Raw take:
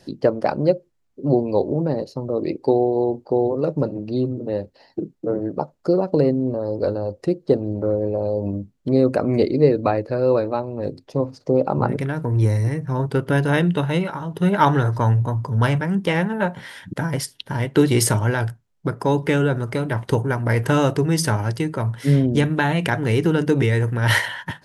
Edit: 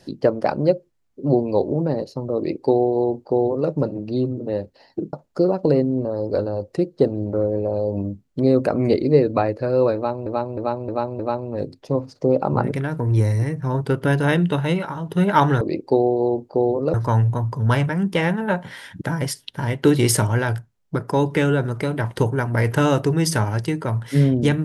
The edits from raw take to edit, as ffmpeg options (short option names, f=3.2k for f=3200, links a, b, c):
-filter_complex "[0:a]asplit=8[a][b][c][d][e][f][g][h];[a]atrim=end=5.132[i];[b]atrim=start=5.618:end=10.752[j];[c]atrim=start=10.438:end=10.752[k];[d]atrim=start=10.438:end=10.752[l];[e]atrim=start=10.438:end=10.752[m];[f]atrim=start=10.438:end=14.862[n];[g]atrim=start=2.368:end=3.702[o];[h]atrim=start=14.858[p];[i][j]acrossfade=d=0.004:c1=hsin:c2=hsin[q];[q][k]acrossfade=d=0.004:c1=hsin:c2=hsin[r];[r][l]acrossfade=d=0.004:c1=hsin:c2=hsin[s];[s][m]acrossfade=d=0.004:c1=hsin:c2=hsin[t];[t][n]acrossfade=d=0.004:c1=hsin:c2=hsin[u];[u][o]acrossfade=d=0.004:c1=hsin:c2=hsin[v];[v][p]acrossfade=d=0.004:c1=hsin:c2=hsin"